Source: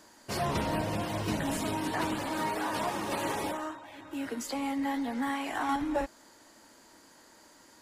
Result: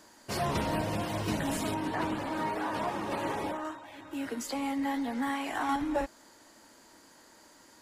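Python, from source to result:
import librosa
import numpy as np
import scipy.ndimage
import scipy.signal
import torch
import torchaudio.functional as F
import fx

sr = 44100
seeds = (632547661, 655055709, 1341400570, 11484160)

y = fx.high_shelf(x, sr, hz=4000.0, db=-11.0, at=(1.74, 3.65))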